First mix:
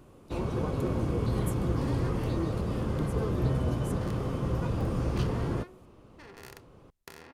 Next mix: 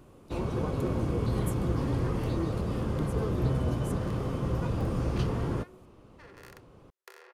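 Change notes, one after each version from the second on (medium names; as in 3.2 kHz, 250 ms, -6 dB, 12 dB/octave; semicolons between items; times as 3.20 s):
second sound: add rippled Chebyshev high-pass 360 Hz, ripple 6 dB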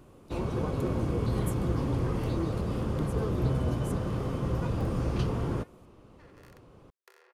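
second sound -7.5 dB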